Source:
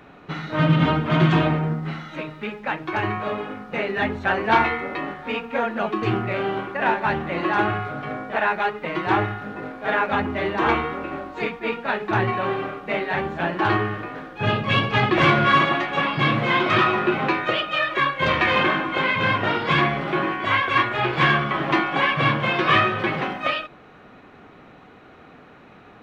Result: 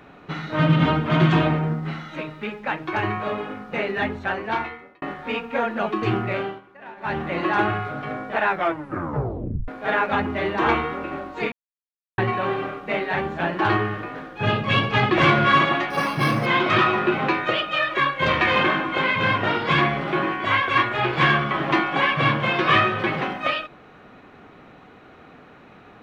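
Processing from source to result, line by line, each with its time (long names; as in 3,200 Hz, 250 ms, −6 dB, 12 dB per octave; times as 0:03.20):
0:03.87–0:05.02: fade out
0:06.36–0:07.20: duck −19.5 dB, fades 0.24 s
0:08.47: tape stop 1.21 s
0:11.52–0:12.18: silence
0:15.90–0:16.46: linearly interpolated sample-rate reduction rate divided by 6×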